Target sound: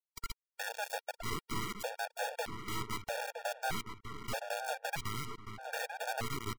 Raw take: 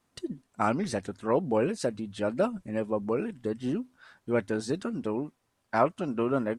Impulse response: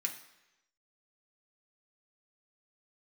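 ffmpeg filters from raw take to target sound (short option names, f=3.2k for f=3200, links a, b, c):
-filter_complex "[0:a]afftfilt=real='real(if(between(b,1,1008),(2*floor((b-1)/48)+1)*48-b,b),0)':imag='imag(if(between(b,1,1008),(2*floor((b-1)/48)+1)*48-b,b),0)*if(between(b,1,1008),-1,1)':win_size=2048:overlap=0.75,lowpass=9.4k,bandreject=f=910:w=20,acompressor=threshold=-33dB:ratio=16,acrusher=bits=3:dc=4:mix=0:aa=0.000001,aeval=exprs='(tanh(22.4*val(0)+0.2)-tanh(0.2))/22.4':c=same,asplit=2[a][b];[b]adelay=965,lowpass=f=2.5k:p=1,volume=-6dB,asplit=2[c][d];[d]adelay=965,lowpass=f=2.5k:p=1,volume=0.43,asplit=2[e][f];[f]adelay=965,lowpass=f=2.5k:p=1,volume=0.43,asplit=2[g][h];[h]adelay=965,lowpass=f=2.5k:p=1,volume=0.43,asplit=2[i][j];[j]adelay=965,lowpass=f=2.5k:p=1,volume=0.43[k];[c][e][g][i][k]amix=inputs=5:normalize=0[l];[a][l]amix=inputs=2:normalize=0,afftfilt=real='re*gt(sin(2*PI*0.8*pts/sr)*(1-2*mod(floor(b*sr/1024/470),2)),0)':imag='im*gt(sin(2*PI*0.8*pts/sr)*(1-2*mod(floor(b*sr/1024/470),2)),0)':win_size=1024:overlap=0.75,volume=7dB"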